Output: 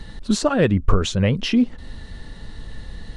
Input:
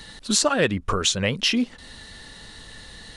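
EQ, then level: tilt EQ -3 dB/octave; 0.0 dB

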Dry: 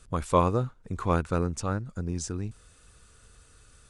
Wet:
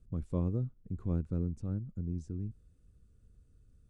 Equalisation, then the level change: FFT filter 210 Hz 0 dB, 320 Hz -4 dB, 990 Hz -24 dB; -4.0 dB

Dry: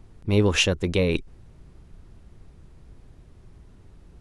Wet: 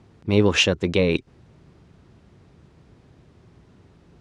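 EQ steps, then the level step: band-pass 110–6300 Hz; +3.0 dB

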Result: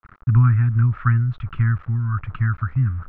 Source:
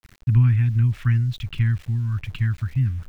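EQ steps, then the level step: resonant low-pass 1.3 kHz, resonance Q 5.9; +1.5 dB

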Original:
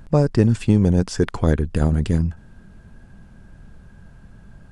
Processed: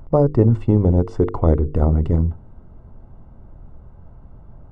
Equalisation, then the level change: Savitzky-Golay filter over 65 samples; peaking EQ 190 Hz -8 dB 0.62 oct; hum notches 50/100/150/200/250/300/350/400/450/500 Hz; +4.5 dB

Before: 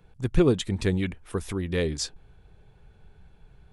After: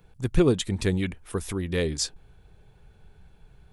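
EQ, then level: treble shelf 6.5 kHz +7 dB; 0.0 dB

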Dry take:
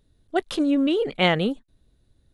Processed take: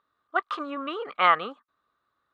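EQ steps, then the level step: resonant high-pass 1.2 kHz, resonance Q 14; distance through air 68 m; tilt EQ -4.5 dB/octave; 0.0 dB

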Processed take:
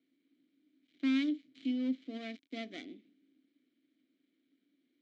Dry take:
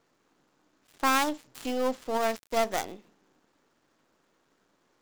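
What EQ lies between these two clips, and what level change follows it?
vowel filter i; cabinet simulation 120–7600 Hz, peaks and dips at 320 Hz +5 dB, 680 Hz +9 dB, 4 kHz +9 dB; bass shelf 290 Hz +5.5 dB; 0.0 dB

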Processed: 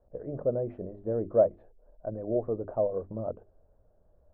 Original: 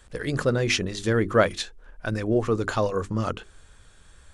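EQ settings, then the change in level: four-pole ladder low-pass 680 Hz, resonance 70%; hum notches 50/100 Hz; 0.0 dB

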